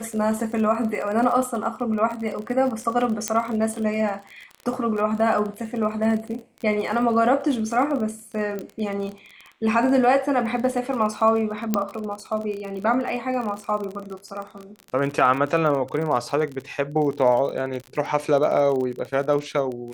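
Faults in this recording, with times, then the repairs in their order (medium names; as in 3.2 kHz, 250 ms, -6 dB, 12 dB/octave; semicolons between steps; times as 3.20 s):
crackle 34 per s -29 dBFS
3.28 s: pop -7 dBFS
8.59 s: pop -18 dBFS
11.74 s: pop -7 dBFS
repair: de-click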